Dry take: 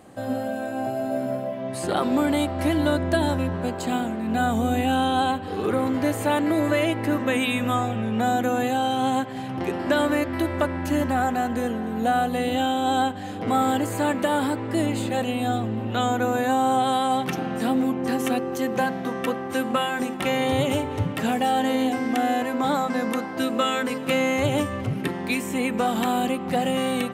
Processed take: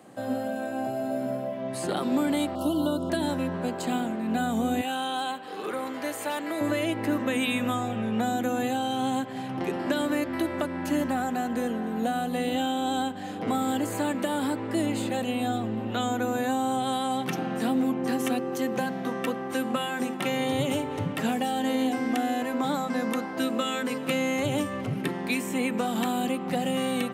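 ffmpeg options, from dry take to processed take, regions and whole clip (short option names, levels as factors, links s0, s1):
-filter_complex "[0:a]asettb=1/sr,asplit=3[s0][s1][s2];[s0]atrim=end=2.554[s3];[s1]atrim=start=2.55:end=3.1,asetpts=PTS-STARTPTS,afade=t=in:d=0.004:c=qsin,afade=t=out:st=0.546:d=0.004:c=qsin,acrossover=split=3100[s4][s5];[s5]acompressor=threshold=0.00282:ratio=4:attack=1:release=60[s6];[s4][s6]amix=inputs=2:normalize=0,asuperstop=centerf=2000:order=20:qfactor=1.5,aemphasis=mode=production:type=50fm[s7];[s2]atrim=start=3.096[s8];[s3][s7]acrossfade=d=0.004:c1=hsin:c2=qsin[s9];[s9][s8]acrossfade=d=0.004:c1=qsin:c2=hsin,asettb=1/sr,asplit=3[s10][s11][s12];[s10]atrim=end=4.814[s13];[s11]atrim=start=4.81:end=6.61,asetpts=PTS-STARTPTS,afade=t=in:d=0.004:c=qsin,afade=t=out:st=1.796:d=0.004:c=qsin,highpass=f=800:p=1,asoftclip=type=hard:threshold=0.15[s14];[s12]atrim=start=6.606[s15];[s13][s14]acrossfade=d=0.004:c1=hsin:c2=qsin[s16];[s16][s15]acrossfade=d=0.004:c1=qsin:c2=hsin,highpass=f=120:w=0.5412,highpass=f=120:w=1.3066,acrossover=split=340|3000[s17][s18][s19];[s18]acompressor=threshold=0.0501:ratio=6[s20];[s17][s20][s19]amix=inputs=3:normalize=0,volume=0.794"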